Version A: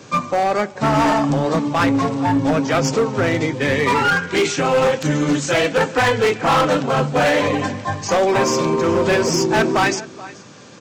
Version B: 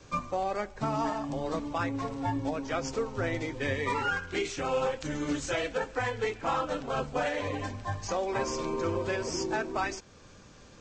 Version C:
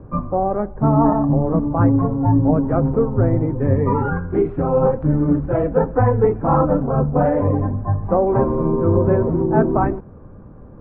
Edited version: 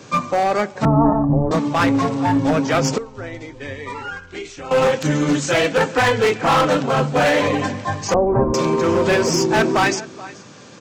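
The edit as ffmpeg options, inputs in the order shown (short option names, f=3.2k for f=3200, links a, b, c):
-filter_complex "[2:a]asplit=2[a][b];[0:a]asplit=4[c][d][e][f];[c]atrim=end=0.852[g];[a]atrim=start=0.848:end=1.512[h];[d]atrim=start=1.508:end=2.982[i];[1:a]atrim=start=2.978:end=4.712[j];[e]atrim=start=4.708:end=8.142[k];[b]atrim=start=8.138:end=8.542[l];[f]atrim=start=8.538[m];[g][h]acrossfade=d=0.004:c1=hsin:c2=hsin[n];[n][i]acrossfade=d=0.004:c1=hsin:c2=hsin[o];[o][j]acrossfade=d=0.004:c1=hsin:c2=hsin[p];[p][k]acrossfade=d=0.004:c1=hsin:c2=hsin[q];[q][l]acrossfade=d=0.004:c1=hsin:c2=hsin[r];[r][m]acrossfade=d=0.004:c1=hsin:c2=hsin"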